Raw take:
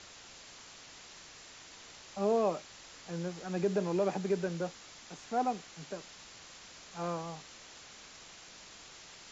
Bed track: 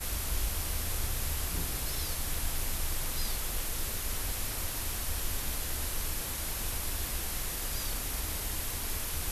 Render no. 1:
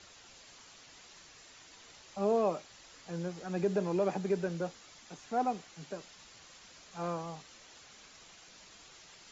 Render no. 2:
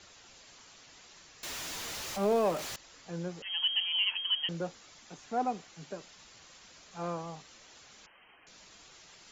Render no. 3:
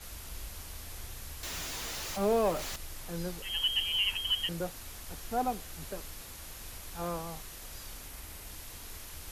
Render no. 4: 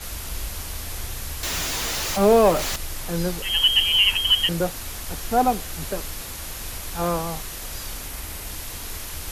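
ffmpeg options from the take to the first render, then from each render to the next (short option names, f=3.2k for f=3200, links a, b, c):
-af "afftdn=nr=6:nf=-53"
-filter_complex "[0:a]asettb=1/sr,asplit=3[a][b][c];[a]atrim=end=1.434[d];[b]atrim=start=1.43:end=2.76,asetpts=PTS-STARTPTS,afade=t=in:d=0.004:c=qsin,afade=t=out:st=1.326:d=0.004:c=qsin,aeval=exprs='val(0)+0.5*0.0178*sgn(val(0))':c=same[e];[c]atrim=start=2.756[f];[d][e]acrossfade=d=0.004:c1=hsin:c2=qsin[g];[g][f]acrossfade=d=0.004:c1=qsin:c2=hsin,asettb=1/sr,asplit=3[h][i][j];[h]atrim=end=3.424[k];[i]atrim=start=3.42:end=4.49,asetpts=PTS-STARTPTS,afade=t=in:d=0.004:c=qsin,afade=t=out:st=1.066:d=0.004:c=qsin,lowpass=f=2.9k:t=q:w=0.5098,lowpass=f=2.9k:t=q:w=0.6013,lowpass=f=2.9k:t=q:w=0.9,lowpass=f=2.9k:t=q:w=2.563,afreqshift=-3400[l];[j]atrim=start=4.486[m];[k][l]acrossfade=d=0.004:c1=hsin:c2=qsin[n];[n][m]acrossfade=d=0.004:c1=qsin:c2=hsin,asettb=1/sr,asplit=3[o][p][q];[o]atrim=end=8.064[r];[p]atrim=start=8.06:end=8.47,asetpts=PTS-STARTPTS,afade=t=in:d=0.004:c=qsin,afade=t=out:st=0.406:d=0.004:c=qsin,lowpass=f=2.7k:t=q:w=0.5098,lowpass=f=2.7k:t=q:w=0.6013,lowpass=f=2.7k:t=q:w=0.9,lowpass=f=2.7k:t=q:w=2.563,afreqshift=-3200[s];[q]atrim=start=8.466[t];[r][s]acrossfade=d=0.004:c1=hsin:c2=qsin[u];[u][t]acrossfade=d=0.004:c1=qsin:c2=hsin"
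-filter_complex "[1:a]volume=-11dB[a];[0:a][a]amix=inputs=2:normalize=0"
-af "volume=12dB"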